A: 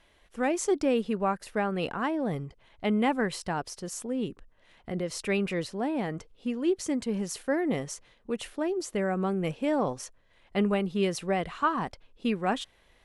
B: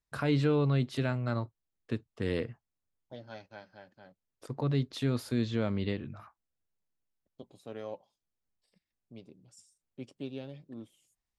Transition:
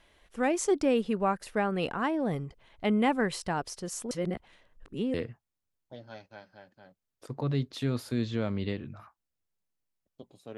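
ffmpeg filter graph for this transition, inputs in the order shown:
-filter_complex "[0:a]apad=whole_dur=10.57,atrim=end=10.57,asplit=2[a][b];[a]atrim=end=4.112[c];[b]atrim=start=4.108:end=5.142,asetpts=PTS-STARTPTS,areverse[d];[1:a]atrim=start=2.338:end=7.77[e];[c][d]acrossfade=d=0.004:c1=hsin:c2=hsin[f];[f][e]acrossfade=d=0.004:c1=hsin:c2=hsin"

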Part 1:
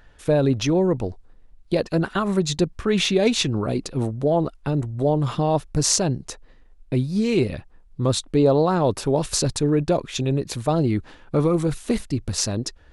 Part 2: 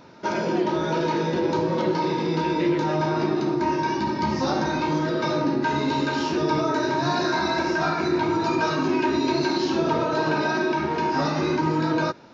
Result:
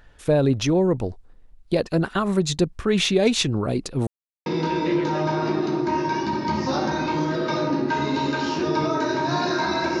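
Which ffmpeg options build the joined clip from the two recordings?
-filter_complex "[0:a]apad=whole_dur=10,atrim=end=10,asplit=2[a][b];[a]atrim=end=4.07,asetpts=PTS-STARTPTS,afade=t=out:st=4.066:d=0.004:c=hsin[c];[b]atrim=start=4.07:end=4.46,asetpts=PTS-STARTPTS,volume=0[d];[1:a]atrim=start=2.2:end=7.74,asetpts=PTS-STARTPTS,afade=t=in:d=0.004:c=hsin[e];[c][d][e]concat=n=3:v=0:a=1"

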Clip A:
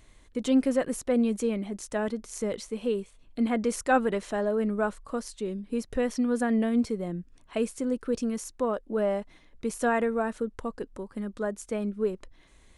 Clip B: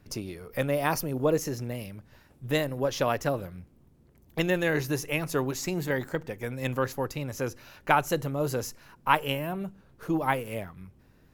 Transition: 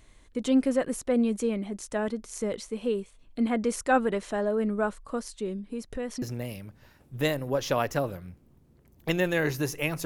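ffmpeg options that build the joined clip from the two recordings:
-filter_complex "[0:a]asettb=1/sr,asplit=3[a][b][c];[a]atrim=end=5.614[d];[b]atrim=start=5.61:end=6.22,asetpts=PTS-STARTPTS,afade=t=in:d=0.004:c=qsin,afade=t=out:st=0.606:d=0.004:c=qsin,acompressor=threshold=-34dB:ratio=2:attack=3.2:release=140:knee=1:detection=peak[e];[c]atrim=start=6.216[f];[d][e]acrossfade=d=0.004:c1=hsin:c2=qsin[g];[g][f]acrossfade=d=0.004:c1=qsin:c2=hsin,apad=whole_dur=10.05,atrim=end=10.05,atrim=end=6.222[h];[1:a]atrim=start=1.518:end=5.35[i];[h][i]acrossfade=d=0.004:c1=hsin:c2=hsin"

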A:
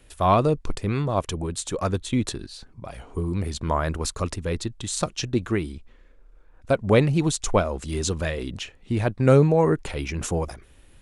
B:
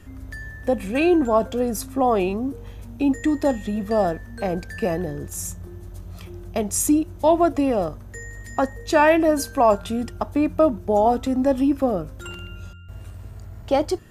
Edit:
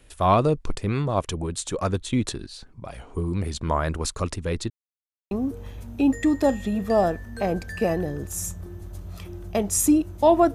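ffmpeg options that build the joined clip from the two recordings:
-filter_complex "[0:a]apad=whole_dur=10.54,atrim=end=10.54,asplit=2[a][b];[a]atrim=end=4.7,asetpts=PTS-STARTPTS,afade=t=out:st=4.696:d=0.004:c=hsin[c];[b]atrim=start=4.7:end=5.31,asetpts=PTS-STARTPTS,volume=0[d];[1:a]atrim=start=2.32:end=7.55,asetpts=PTS-STARTPTS,afade=t=in:d=0.004:c=hsin[e];[c][d][e]concat=n=3:v=0:a=1"

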